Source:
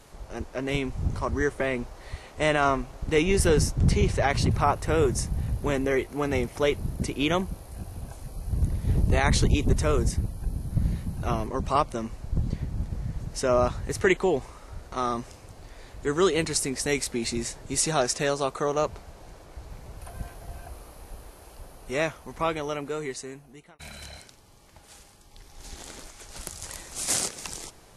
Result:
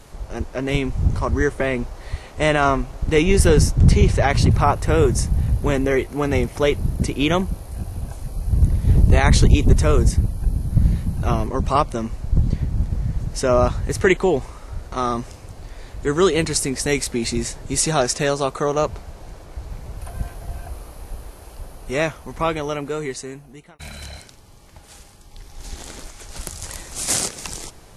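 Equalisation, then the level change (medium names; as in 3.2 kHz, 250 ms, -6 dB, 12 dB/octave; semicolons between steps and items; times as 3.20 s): bass shelf 160 Hz +5.5 dB; +5.0 dB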